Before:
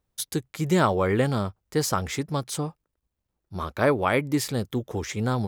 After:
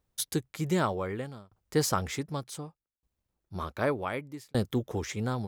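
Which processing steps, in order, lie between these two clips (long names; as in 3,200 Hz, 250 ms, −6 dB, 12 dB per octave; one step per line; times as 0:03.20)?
shaped tremolo saw down 0.66 Hz, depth 100%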